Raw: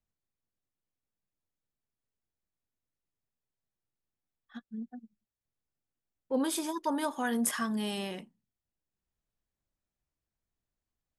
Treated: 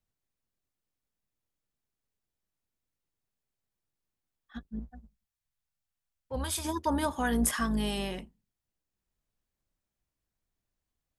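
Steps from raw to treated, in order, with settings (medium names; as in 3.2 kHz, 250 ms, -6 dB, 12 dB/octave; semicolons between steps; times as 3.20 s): octave divider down 2 oct, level -4 dB; 4.79–6.65 s: peaking EQ 320 Hz -14.5 dB 1.5 oct; trim +2 dB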